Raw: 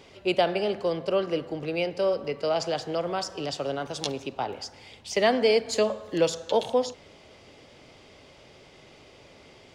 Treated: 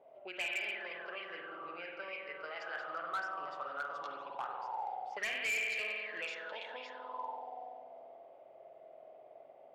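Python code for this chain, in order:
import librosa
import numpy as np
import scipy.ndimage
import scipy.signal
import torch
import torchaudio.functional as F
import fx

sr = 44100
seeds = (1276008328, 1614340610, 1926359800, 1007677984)

y = fx.rev_spring(x, sr, rt60_s=2.7, pass_ms=(47,), chirp_ms=50, drr_db=-1.0)
y = fx.auto_wah(y, sr, base_hz=630.0, top_hz=2400.0, q=9.5, full_db=-17.5, direction='up')
y = np.clip(y, -10.0 ** (-35.5 / 20.0), 10.0 ** (-35.5 / 20.0))
y = fx.env_lowpass(y, sr, base_hz=2700.0, full_db=-40.0)
y = y * librosa.db_to_amplitude(4.0)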